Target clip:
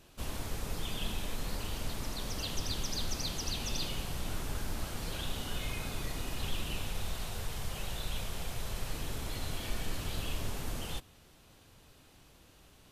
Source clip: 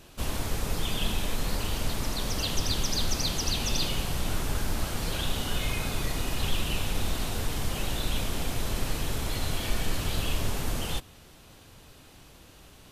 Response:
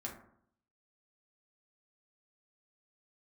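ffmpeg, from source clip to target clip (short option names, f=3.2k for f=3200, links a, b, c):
-filter_complex "[0:a]asettb=1/sr,asplit=3[a][b][c];[a]atrim=end=6.894[d];[b]atrim=start=6.89:end=8.93,asetpts=PTS-STARTPTS,afade=t=in:d=0.004:c=qsin,afade=t=out:st=2.036:d=0.004:c=qsin,equalizer=f=280:w=2.7:g=-10[e];[c]atrim=start=8.926[f];[d][e]acrossfade=d=0.004:c1=hsin:c2=qsin[g];[g][f]acrossfade=d=0.004:c1=qsin:c2=hsin,volume=-7.5dB"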